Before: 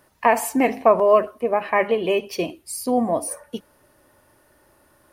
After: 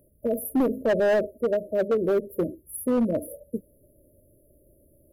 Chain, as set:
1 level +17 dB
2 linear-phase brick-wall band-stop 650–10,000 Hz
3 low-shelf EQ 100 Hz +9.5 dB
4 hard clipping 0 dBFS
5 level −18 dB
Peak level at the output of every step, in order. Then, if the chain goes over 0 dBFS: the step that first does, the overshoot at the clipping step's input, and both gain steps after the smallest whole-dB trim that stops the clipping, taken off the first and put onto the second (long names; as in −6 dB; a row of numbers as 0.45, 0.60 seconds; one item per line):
+13.5, +8.5, +9.0, 0.0, −18.0 dBFS
step 1, 9.0 dB
step 1 +8 dB, step 5 −9 dB